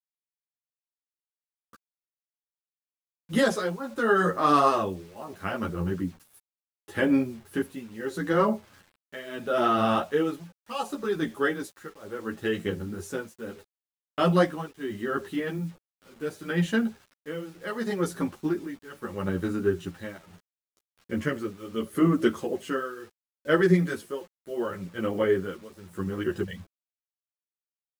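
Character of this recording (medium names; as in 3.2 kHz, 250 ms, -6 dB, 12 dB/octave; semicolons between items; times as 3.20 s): tremolo triangle 0.73 Hz, depth 95%; a quantiser's noise floor 10-bit, dither none; a shimmering, thickened sound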